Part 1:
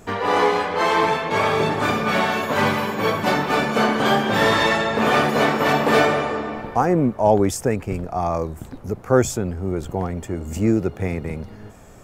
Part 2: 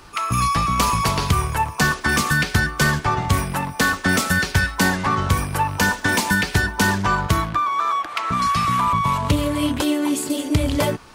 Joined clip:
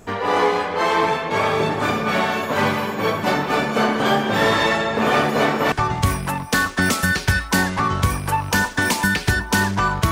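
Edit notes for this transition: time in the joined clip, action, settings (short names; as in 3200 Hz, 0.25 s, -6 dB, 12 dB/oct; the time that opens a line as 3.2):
part 1
5.72 switch to part 2 from 2.99 s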